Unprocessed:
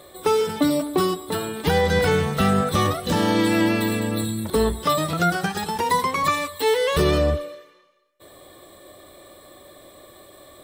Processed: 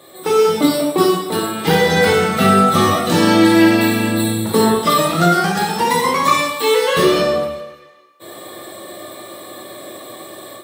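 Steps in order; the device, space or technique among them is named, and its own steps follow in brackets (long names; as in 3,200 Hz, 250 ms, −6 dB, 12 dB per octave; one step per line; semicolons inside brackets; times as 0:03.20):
far laptop microphone (convolution reverb RT60 0.80 s, pre-delay 6 ms, DRR −4 dB; high-pass filter 120 Hz 24 dB per octave; automatic gain control gain up to 8 dB)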